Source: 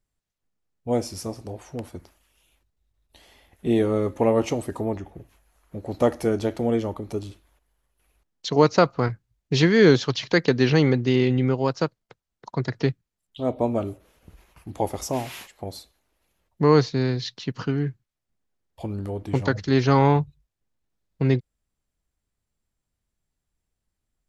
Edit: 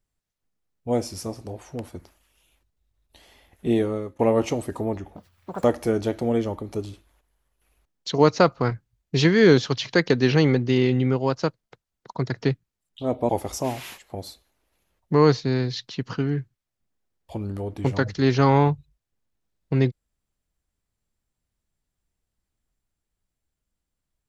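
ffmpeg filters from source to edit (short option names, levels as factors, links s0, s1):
-filter_complex "[0:a]asplit=5[s0][s1][s2][s3][s4];[s0]atrim=end=4.19,asetpts=PTS-STARTPTS,afade=t=out:st=3.72:d=0.47:silence=0.112202[s5];[s1]atrim=start=4.19:end=5.164,asetpts=PTS-STARTPTS,afade=t=in:d=0.004:c=hsin:silence=0.112202[s6];[s2]atrim=start=5.16:end=6.02,asetpts=PTS-STARTPTS,asetrate=78939,aresample=44100[s7];[s3]atrim=start=6.016:end=13.672[s8];[s4]atrim=start=14.778[s9];[s5][s6]concat=n=2:v=0:a=1[s10];[s10][s7]acrossfade=d=0.004:c1=hsin:c2=hsin[s11];[s11][s8]acrossfade=d=0.004:c1=hsin:c2=hsin[s12];[s12][s9]acrossfade=d=0.004:c1=hsin:c2=hsin"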